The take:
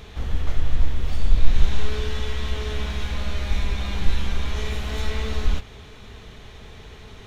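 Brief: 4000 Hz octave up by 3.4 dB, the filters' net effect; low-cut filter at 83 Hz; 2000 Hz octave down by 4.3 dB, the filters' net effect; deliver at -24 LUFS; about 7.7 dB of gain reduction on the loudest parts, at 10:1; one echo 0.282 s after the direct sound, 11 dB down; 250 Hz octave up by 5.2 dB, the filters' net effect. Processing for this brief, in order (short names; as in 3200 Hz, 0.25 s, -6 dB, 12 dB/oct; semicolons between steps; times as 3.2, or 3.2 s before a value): HPF 83 Hz; bell 250 Hz +7 dB; bell 2000 Hz -7.5 dB; bell 4000 Hz +6.5 dB; compressor 10:1, threshold -32 dBFS; echo 0.282 s -11 dB; gain +13 dB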